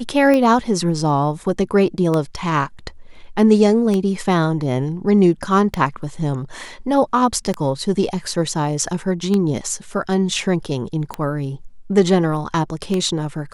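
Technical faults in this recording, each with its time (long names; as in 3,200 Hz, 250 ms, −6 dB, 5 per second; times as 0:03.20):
scratch tick 33 1/3 rpm −8 dBFS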